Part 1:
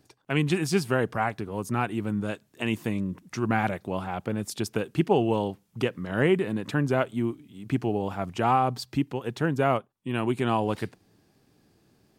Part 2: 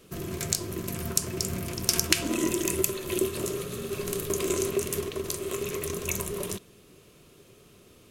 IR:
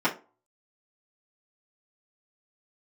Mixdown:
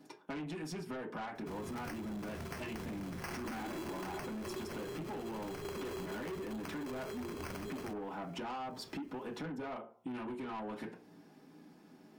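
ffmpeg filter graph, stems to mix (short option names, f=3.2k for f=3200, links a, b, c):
-filter_complex "[0:a]acompressor=threshold=-28dB:ratio=8,volume=-6.5dB,asplit=2[a][b];[b]volume=-3.5dB[c];[1:a]acrusher=samples=12:mix=1:aa=0.000001,adelay=1350,volume=-0.5dB[d];[2:a]atrim=start_sample=2205[e];[c][e]afir=irnorm=-1:irlink=0[f];[a][d][f]amix=inputs=3:normalize=0,asoftclip=type=tanh:threshold=-27.5dB,acompressor=threshold=-41dB:ratio=5"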